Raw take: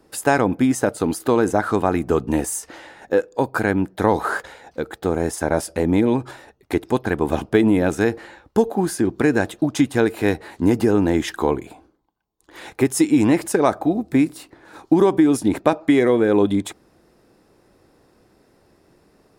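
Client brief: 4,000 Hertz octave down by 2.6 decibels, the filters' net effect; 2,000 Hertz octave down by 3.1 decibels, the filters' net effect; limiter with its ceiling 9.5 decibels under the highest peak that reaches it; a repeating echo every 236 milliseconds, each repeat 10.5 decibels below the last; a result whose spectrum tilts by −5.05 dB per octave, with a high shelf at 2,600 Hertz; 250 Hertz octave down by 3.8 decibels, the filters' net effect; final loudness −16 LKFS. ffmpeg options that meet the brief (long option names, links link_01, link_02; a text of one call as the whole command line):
ffmpeg -i in.wav -af "equalizer=frequency=250:width_type=o:gain=-5,equalizer=frequency=2000:width_type=o:gain=-5.5,highshelf=frequency=2600:gain=7.5,equalizer=frequency=4000:width_type=o:gain=-8.5,alimiter=limit=-12dB:level=0:latency=1,aecho=1:1:236|472|708:0.299|0.0896|0.0269,volume=8dB" out.wav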